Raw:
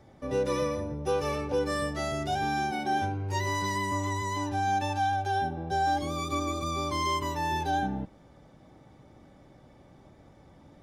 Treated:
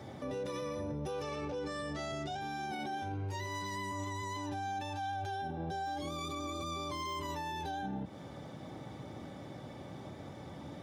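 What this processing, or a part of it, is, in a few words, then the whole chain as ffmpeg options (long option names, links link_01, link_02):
broadcast voice chain: -filter_complex "[0:a]highpass=frequency=80:width=0.5412,highpass=frequency=80:width=1.3066,deesser=0.85,acompressor=threshold=-37dB:ratio=4,equalizer=frequency=3500:width_type=o:width=0.44:gain=4,alimiter=level_in=16dB:limit=-24dB:level=0:latency=1:release=36,volume=-16dB,asettb=1/sr,asplit=3[link_01][link_02][link_03];[link_01]atrim=end=1.224[link_04];[link_02]atrim=start=1.22:end=2.41,asetpts=PTS-STARTPTS,afade=type=in:duration=0.004:curve=qsin,afade=type=out:start_time=1.186:duration=0.004:curve=qsin,lowpass=frequency=8900:width=0.5412,lowpass=frequency=8900:width=1.3066[link_05];[link_03]atrim=start=2.406[link_06];[link_04][link_05]acrossfade=duration=0.004:curve1=hsin:curve2=qsin[link_07];[link_07][link_06]acrossfade=duration=0.004:curve1=qsin:curve2=hsin,volume=8.5dB"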